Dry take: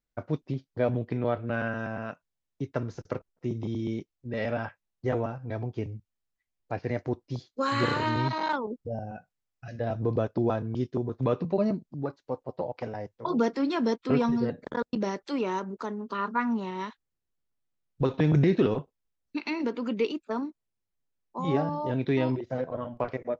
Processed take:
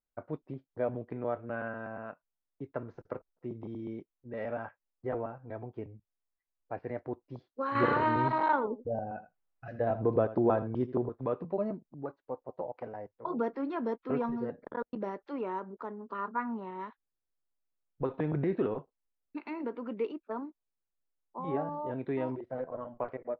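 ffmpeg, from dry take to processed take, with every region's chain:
ffmpeg -i in.wav -filter_complex "[0:a]asettb=1/sr,asplit=3[link_01][link_02][link_03];[link_01]atrim=end=7.754[link_04];[link_02]atrim=start=7.75:end=11.09,asetpts=PTS-STARTPTS,afade=type=in:duration=0.004:curve=qsin,afade=type=out:start_time=3.336:duration=0.004:curve=qsin,acontrast=70,aecho=1:1:82:0.178,atrim=end_sample=147294[link_05];[link_03]atrim=start=11.086[link_06];[link_04][link_05]acrossfade=duration=0.004:curve1=hsin:curve2=qsin[link_07];[link_07][link_06]acrossfade=duration=0.004:curve1=qsin:curve2=hsin,lowpass=1400,equalizer=frequency=99:width=0.4:gain=-9.5,volume=-3dB" out.wav

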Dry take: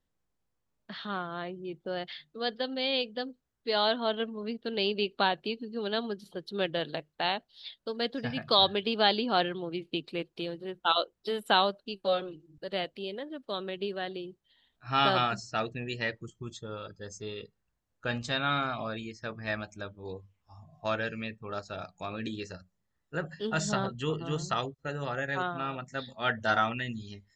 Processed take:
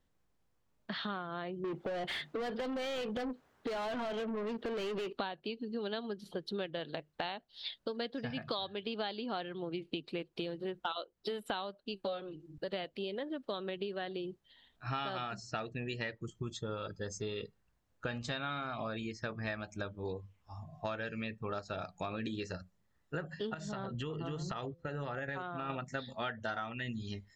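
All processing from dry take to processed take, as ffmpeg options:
ffmpeg -i in.wav -filter_complex "[0:a]asettb=1/sr,asplit=3[link_01][link_02][link_03];[link_01]atrim=end=1.644[link_04];[link_02]atrim=start=1.64:end=5.13,asetpts=PTS-STARTPTS,afade=type=in:duration=0.004:curve=qsin,afade=type=out:start_time=3.486:duration=0.004:curve=qsin,equalizer=frequency=4700:width=0.34:gain=-6.5,acompressor=threshold=-39dB:ratio=3:attack=3.2:release=140:knee=1:detection=peak,asplit=2[link_05][link_06];[link_06]highpass=frequency=720:poles=1,volume=28dB,asoftclip=type=tanh:threshold=-28.5dB[link_07];[link_05][link_07]amix=inputs=2:normalize=0,lowpass=frequency=2600:poles=1,volume=-6dB[link_08];[link_03]atrim=start=5.126[link_09];[link_04][link_08]acrossfade=duration=0.004:curve1=hsin:curve2=qsin[link_10];[link_10][link_09]acrossfade=duration=0.004:curve1=qsin:curve2=hsin,asettb=1/sr,asplit=3[link_11][link_12][link_13];[link_11]atrim=end=23.544[link_14];[link_12]atrim=start=23.54:end=25.7,asetpts=PTS-STARTPTS,afade=type=in:duration=0.004:curve=qsin,afade=type=out:start_time=2.156:duration=0.004:curve=qsin,highshelf=frequency=6200:gain=-10.5,bandreject=frequency=170.2:width_type=h:width=4,bandreject=frequency=340.4:width_type=h:width=4,bandreject=frequency=510.6:width_type=h:width=4,acompressor=threshold=-37dB:ratio=10:attack=3.2:release=140:knee=1:detection=peak[link_15];[link_13]atrim=start=25.696[link_16];[link_14][link_15]acrossfade=duration=0.004:curve1=hsin:curve2=qsin[link_17];[link_17][link_16]acrossfade=duration=0.004:curve1=qsin:curve2=hsin,highshelf=frequency=5300:gain=-5.5,acompressor=threshold=-40dB:ratio=10,volume=5dB" out.wav

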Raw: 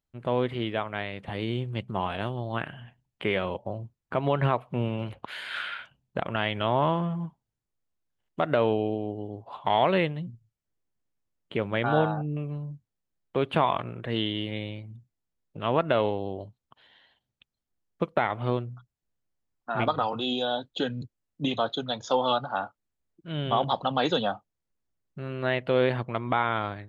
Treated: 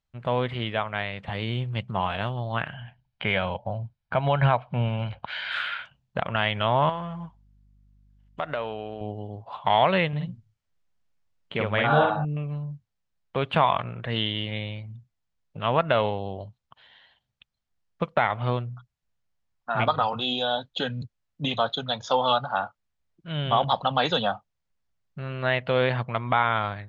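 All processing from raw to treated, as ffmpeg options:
ffmpeg -i in.wav -filter_complex "[0:a]asettb=1/sr,asplit=3[link_01][link_02][link_03];[link_01]atrim=end=2.744[link_04];[link_02]atrim=start=2.74:end=5.52,asetpts=PTS-STARTPTS,afade=type=in:duration=0.004:curve=qsin,afade=type=out:start_time=2.776:duration=0.004:curve=qsin,lowpass=frequency=5200:width=0.5412,lowpass=frequency=5200:width=1.3066,aecho=1:1:1.3:0.34,atrim=end_sample=122598[link_05];[link_03]atrim=start=5.516[link_06];[link_04][link_05]acrossfade=duration=0.004:curve1=hsin:curve2=qsin[link_07];[link_07][link_06]acrossfade=duration=0.004:curve1=qsin:curve2=hsin,asettb=1/sr,asplit=3[link_08][link_09][link_10];[link_08]atrim=end=6.894[link_11];[link_09]atrim=start=6.89:end=9.01,asetpts=PTS-STARTPTS,afade=type=in:duration=0.004:curve=qsin,afade=type=out:start_time=2.116:duration=0.004:curve=qsin,acompressor=threshold=-27dB:ratio=2.5:attack=3.2:release=140:knee=1:detection=peak,lowshelf=frequency=200:gain=-11.5,aeval=exprs='val(0)+0.000891*(sin(2*PI*50*n/s)+sin(2*PI*2*50*n/s)/2+sin(2*PI*3*50*n/s)/3+sin(2*PI*4*50*n/s)/4+sin(2*PI*5*50*n/s)/5)':channel_layout=same[link_12];[link_10]atrim=start=9.006[link_13];[link_11][link_12]acrossfade=duration=0.004:curve1=hsin:curve2=qsin[link_14];[link_14][link_13]acrossfade=duration=0.004:curve1=qsin:curve2=hsin,asettb=1/sr,asplit=3[link_15][link_16][link_17];[link_15]atrim=end=10.084[link_18];[link_16]atrim=start=10.08:end=12.25,asetpts=PTS-STARTPTS,afade=type=in:duration=0.004:curve=qsin,afade=type=out:start_time=2.166:duration=0.004:curve=qsin,equalizer=frequency=120:width_type=o:width=0.25:gain=-5,asplit=2[link_19][link_20];[link_20]adelay=48,volume=-2dB[link_21];[link_19][link_21]amix=inputs=2:normalize=0,atrim=end_sample=95697[link_22];[link_17]atrim=start=12.246[link_23];[link_18][link_22]acrossfade=duration=0.004:curve1=hsin:curve2=qsin[link_24];[link_24][link_23]acrossfade=duration=0.004:curve1=qsin:curve2=hsin,lowpass=5800,equalizer=frequency=330:width=1.4:gain=-10.5,volume=4.5dB" out.wav

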